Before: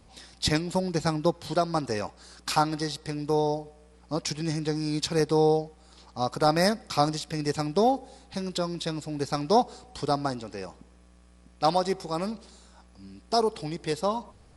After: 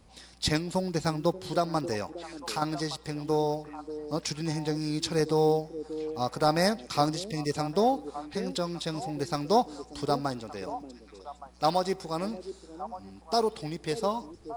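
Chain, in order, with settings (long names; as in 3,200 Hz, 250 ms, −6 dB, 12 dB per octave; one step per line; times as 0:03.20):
one scale factor per block 7 bits
0:02.03–0:02.62: downward compressor 2 to 1, threshold −33 dBFS, peak gain reduction 9 dB
0:07.27–0:07.52: time-frequency box erased 650–1,800 Hz
echo through a band-pass that steps 584 ms, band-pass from 340 Hz, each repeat 1.4 octaves, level −8.5 dB
level −2 dB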